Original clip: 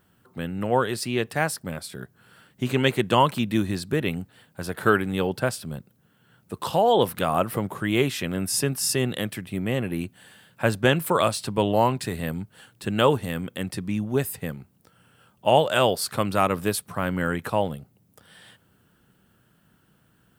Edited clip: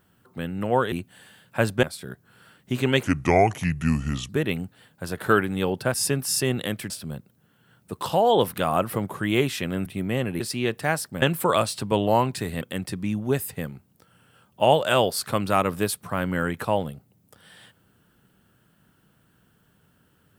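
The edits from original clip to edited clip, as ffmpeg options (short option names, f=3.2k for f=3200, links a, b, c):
-filter_complex "[0:a]asplit=11[a][b][c][d][e][f][g][h][i][j][k];[a]atrim=end=0.922[l];[b]atrim=start=9.968:end=10.882[m];[c]atrim=start=1.738:end=2.944[n];[d]atrim=start=2.94:end=3.86,asetpts=PTS-STARTPTS,asetrate=32193,aresample=44100,atrim=end_sample=55578,asetpts=PTS-STARTPTS[o];[e]atrim=start=3.856:end=5.512[p];[f]atrim=start=8.468:end=9.432[q];[g]atrim=start=5.508:end=8.472[r];[h]atrim=start=9.428:end=9.972[s];[i]atrim=start=0.918:end=1.742[t];[j]atrim=start=10.878:end=12.272[u];[k]atrim=start=13.458[v];[l][m]acrossfade=d=0.004:c1=hsin:c2=hsin[w];[w][n]acrossfade=d=0.004:c1=hsin:c2=hsin[x];[x][o]acrossfade=d=0.004:c1=hsin:c2=hsin[y];[y][p]acrossfade=d=0.004:c1=hsin:c2=hsin[z];[z][q]acrossfade=d=0.004:c1=hsin:c2=hsin[aa];[aa][r]acrossfade=d=0.004:c1=hsin:c2=hsin[ab];[ab][s]acrossfade=d=0.004:c1=hsin:c2=hsin[ac];[ac][t]acrossfade=d=0.004:c1=hsin:c2=hsin[ad];[ad][u]acrossfade=d=0.004:c1=hsin:c2=hsin[ae];[ae][v]acrossfade=d=0.004:c1=hsin:c2=hsin"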